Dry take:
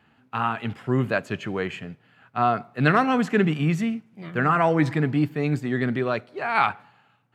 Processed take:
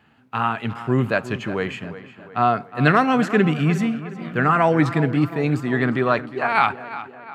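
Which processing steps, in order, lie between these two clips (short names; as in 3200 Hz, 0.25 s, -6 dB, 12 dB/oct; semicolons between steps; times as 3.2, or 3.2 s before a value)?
tape echo 0.358 s, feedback 55%, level -13 dB, low-pass 3400 Hz; 5.57–6.47 dynamic EQ 1100 Hz, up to +7 dB, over -40 dBFS, Q 1.2; gain +3 dB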